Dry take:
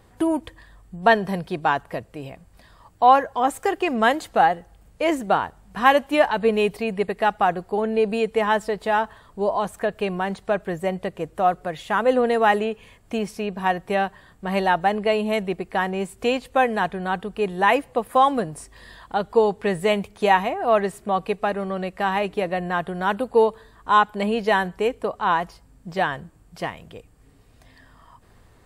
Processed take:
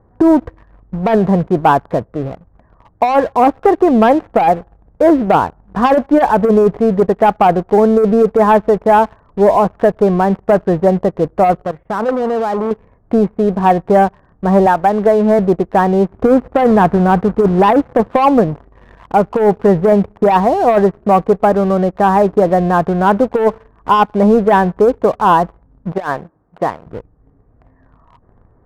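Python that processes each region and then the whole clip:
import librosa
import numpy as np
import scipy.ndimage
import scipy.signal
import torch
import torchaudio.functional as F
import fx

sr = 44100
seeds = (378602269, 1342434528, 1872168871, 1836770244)

y = fx.chain(x, sr, fx.level_steps(step_db=14),
    fx.transformer_sat(knee_hz=2400.0), at=(11.62, 12.71))
y = fx.chain(y, sr, fx.cheby_ripple(hz=5500.0, ripple_db=6),
    fx.band_squash(depth_pct=100), at=(14.66, 15.39))
y = fx.chain(y, sr, fx.highpass(hz=48.0, slope=12),
    fx.low_shelf(hz=360.0, db=5.0),
    fx.quant_companded(bits=4), at=(16.1, 18.16))
y = fx.chain(y, sr, fx.highpass(hz=430.0, slope=6),
    fx.over_compress(threshold_db=-27.0, ratio=-0.5), at=(25.92, 26.86))
y = scipy.signal.sosfilt(scipy.signal.bessel(8, 910.0, 'lowpass', norm='mag', fs=sr, output='sos'), y)
y = fx.leveller(y, sr, passes=2)
y = fx.over_compress(y, sr, threshold_db=-14.0, ratio=-0.5)
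y = y * 10.0 ** (6.5 / 20.0)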